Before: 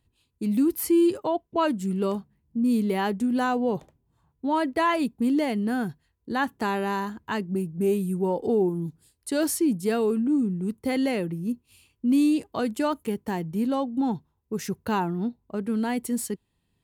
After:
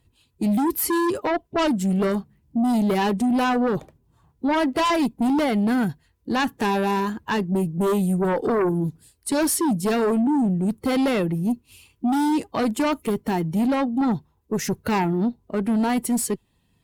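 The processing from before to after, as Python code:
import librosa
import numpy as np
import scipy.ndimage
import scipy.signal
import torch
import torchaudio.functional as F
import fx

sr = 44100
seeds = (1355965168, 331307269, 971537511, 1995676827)

y = fx.spec_quant(x, sr, step_db=15)
y = fx.cheby_harmonics(y, sr, harmonics=(5,), levels_db=(-8,), full_scale_db=-13.5)
y = y * 10.0 ** (-1.5 / 20.0)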